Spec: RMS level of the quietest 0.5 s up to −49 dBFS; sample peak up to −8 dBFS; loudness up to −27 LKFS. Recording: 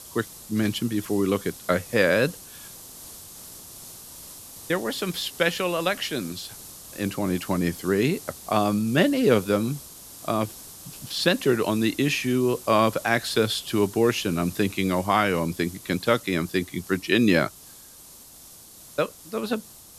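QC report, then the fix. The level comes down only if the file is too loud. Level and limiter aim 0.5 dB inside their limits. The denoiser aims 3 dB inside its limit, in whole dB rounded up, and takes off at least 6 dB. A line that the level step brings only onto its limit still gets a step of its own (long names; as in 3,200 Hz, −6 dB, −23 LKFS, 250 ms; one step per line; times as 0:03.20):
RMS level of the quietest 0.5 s −47 dBFS: out of spec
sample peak −5.0 dBFS: out of spec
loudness −24.5 LKFS: out of spec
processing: level −3 dB
brickwall limiter −8.5 dBFS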